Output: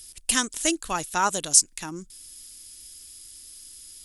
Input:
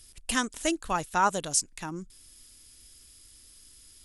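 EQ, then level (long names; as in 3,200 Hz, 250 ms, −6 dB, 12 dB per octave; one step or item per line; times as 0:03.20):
parametric band 320 Hz +3.5 dB 0.76 octaves
high-shelf EQ 2,700 Hz +12 dB
−1.5 dB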